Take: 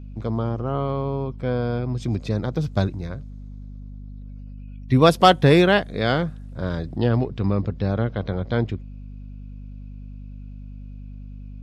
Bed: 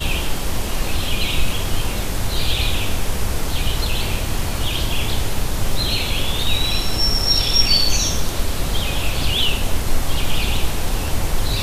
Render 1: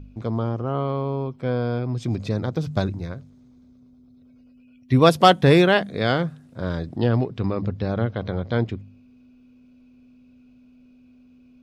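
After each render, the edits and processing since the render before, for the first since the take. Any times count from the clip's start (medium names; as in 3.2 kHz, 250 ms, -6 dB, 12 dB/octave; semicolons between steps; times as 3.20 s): de-hum 50 Hz, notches 4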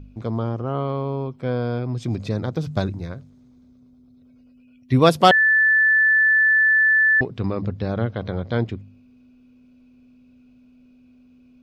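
5.31–7.21 s: bleep 1.75 kHz -13 dBFS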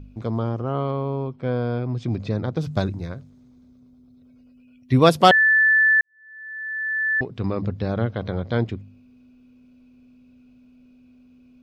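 0.91–2.57 s: distance through air 110 m; 6.01–7.53 s: fade in quadratic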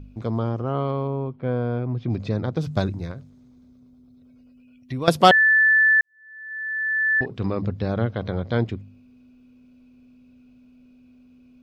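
1.07–2.10 s: distance through air 260 m; 3.11–5.08 s: compression 2.5:1, threshold -31 dBFS; 6.46–7.51 s: doubling 48 ms -13 dB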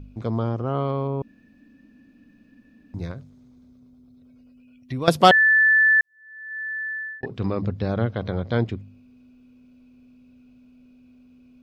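1.22–2.94 s: room tone; 6.59–7.23 s: fade out linear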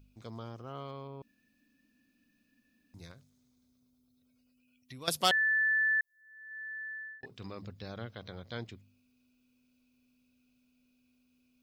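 pre-emphasis filter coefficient 0.9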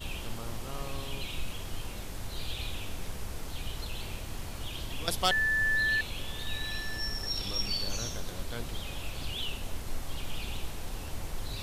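add bed -17 dB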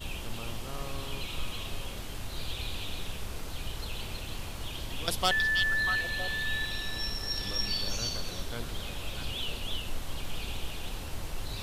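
repeats whose band climbs or falls 321 ms, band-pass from 3.4 kHz, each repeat -1.4 oct, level -1.5 dB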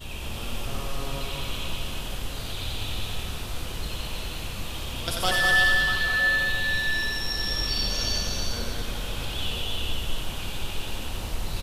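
loudspeakers at several distances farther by 31 m -4 dB, 70 m -4 dB; gated-style reverb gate 470 ms flat, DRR 0.5 dB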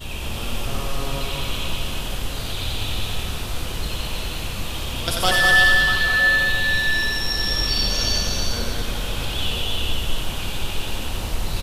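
trim +5.5 dB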